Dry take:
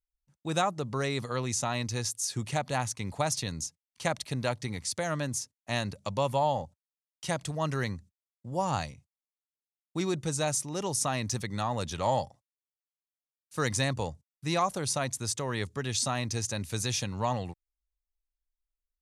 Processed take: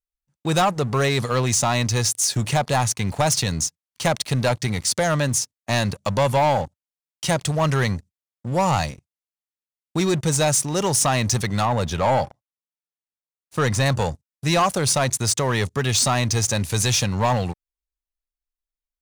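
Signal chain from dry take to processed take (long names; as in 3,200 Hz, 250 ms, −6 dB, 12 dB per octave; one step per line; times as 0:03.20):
dynamic equaliser 290 Hz, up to −4 dB, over −44 dBFS, Q 2.2
leveller curve on the samples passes 3
0:11.65–0:13.86: high-shelf EQ 3,300 Hz −8 dB
level +1.5 dB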